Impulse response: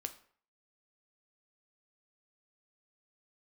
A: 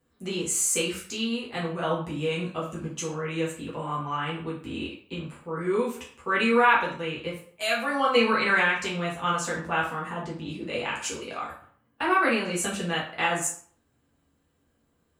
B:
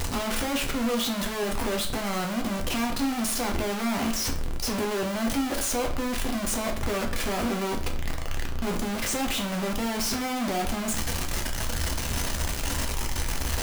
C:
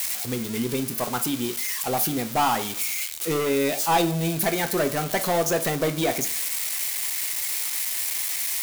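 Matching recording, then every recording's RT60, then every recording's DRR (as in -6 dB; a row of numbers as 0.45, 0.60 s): C; 0.55, 0.55, 0.55 s; -6.0, 1.5, 7.5 dB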